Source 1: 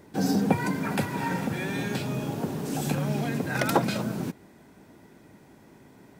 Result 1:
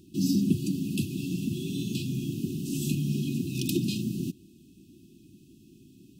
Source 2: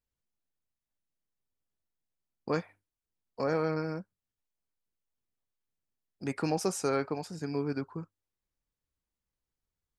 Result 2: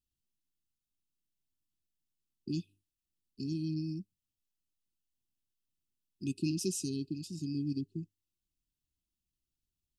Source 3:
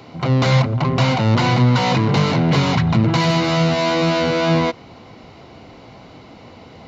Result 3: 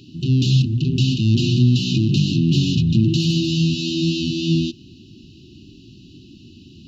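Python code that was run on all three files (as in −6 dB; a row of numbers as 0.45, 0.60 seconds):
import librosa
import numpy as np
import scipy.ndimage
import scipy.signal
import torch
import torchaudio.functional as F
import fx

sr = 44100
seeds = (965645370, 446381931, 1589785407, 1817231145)

y = fx.brickwall_bandstop(x, sr, low_hz=390.0, high_hz=2500.0)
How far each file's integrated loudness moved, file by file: −1.5, −4.0, −1.5 LU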